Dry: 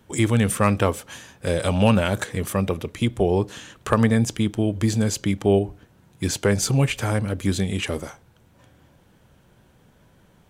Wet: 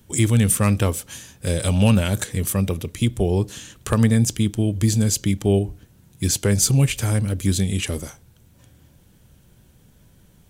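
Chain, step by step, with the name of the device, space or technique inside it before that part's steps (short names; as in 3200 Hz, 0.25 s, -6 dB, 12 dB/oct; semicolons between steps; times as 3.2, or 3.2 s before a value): smiley-face EQ (low shelf 110 Hz +6 dB; bell 950 Hz -7.5 dB 2.6 oct; high shelf 5900 Hz +9 dB); gain +1.5 dB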